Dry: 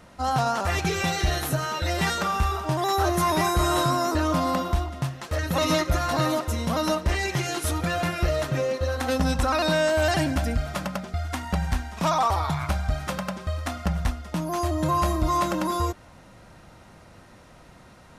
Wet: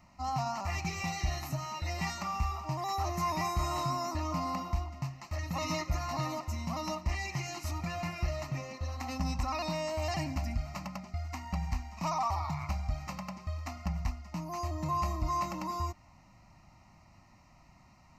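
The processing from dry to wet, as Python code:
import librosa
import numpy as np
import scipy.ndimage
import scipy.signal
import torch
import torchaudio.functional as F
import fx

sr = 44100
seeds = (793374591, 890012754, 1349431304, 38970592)

y = fx.fixed_phaser(x, sr, hz=2300.0, stages=8)
y = F.gain(torch.from_numpy(y), -7.5).numpy()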